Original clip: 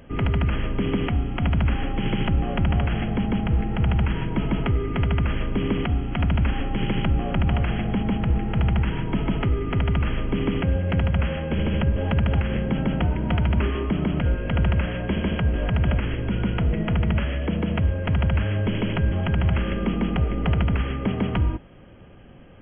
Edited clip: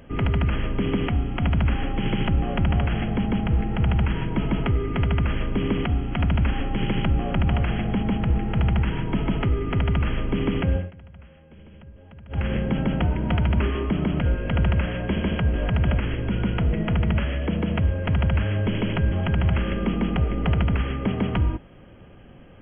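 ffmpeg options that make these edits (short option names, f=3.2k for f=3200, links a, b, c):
-filter_complex "[0:a]asplit=3[a][b][c];[a]atrim=end=10.91,asetpts=PTS-STARTPTS,afade=t=out:st=10.76:d=0.15:silence=0.0668344[d];[b]atrim=start=10.91:end=12.29,asetpts=PTS-STARTPTS,volume=-23.5dB[e];[c]atrim=start=12.29,asetpts=PTS-STARTPTS,afade=t=in:d=0.15:silence=0.0668344[f];[d][e][f]concat=n=3:v=0:a=1"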